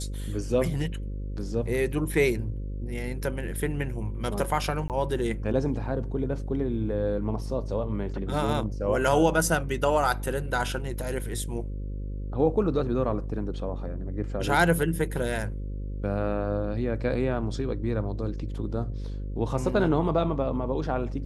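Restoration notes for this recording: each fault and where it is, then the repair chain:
buzz 50 Hz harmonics 11 -33 dBFS
4.88–4.9 gap 18 ms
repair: de-hum 50 Hz, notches 11; interpolate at 4.88, 18 ms

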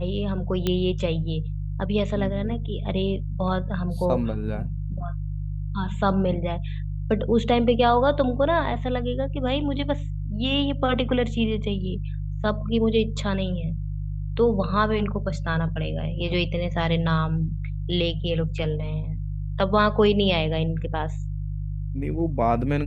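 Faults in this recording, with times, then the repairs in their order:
hum 50 Hz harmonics 3 -29 dBFS
0.67 pop -11 dBFS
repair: de-click; de-hum 50 Hz, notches 3

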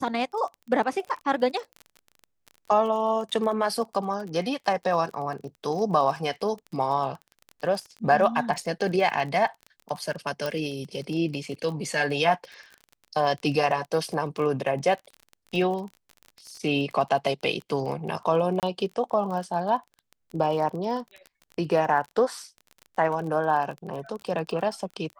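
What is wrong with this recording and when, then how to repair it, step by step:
crackle 24/s -33 dBFS
10.46 pop -15 dBFS
18.6–18.63 gap 28 ms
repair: de-click; interpolate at 18.6, 28 ms

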